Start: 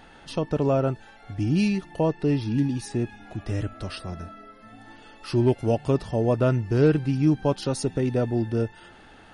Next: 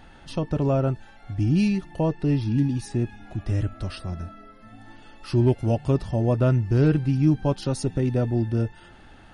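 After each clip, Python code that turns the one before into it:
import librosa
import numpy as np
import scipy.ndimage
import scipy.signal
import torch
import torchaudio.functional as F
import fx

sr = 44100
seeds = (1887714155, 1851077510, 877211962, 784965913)

y = fx.low_shelf(x, sr, hz=150.0, db=9.5)
y = fx.notch(y, sr, hz=450.0, q=12.0)
y = F.gain(torch.from_numpy(y), -2.0).numpy()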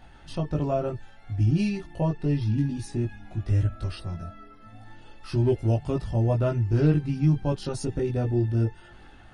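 y = fx.chorus_voices(x, sr, voices=6, hz=0.46, base_ms=19, depth_ms=1.6, mix_pct=45)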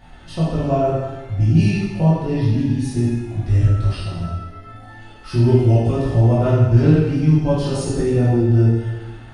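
y = fx.rev_plate(x, sr, seeds[0], rt60_s=1.2, hf_ratio=0.9, predelay_ms=0, drr_db=-5.5)
y = F.gain(torch.from_numpy(y), 2.0).numpy()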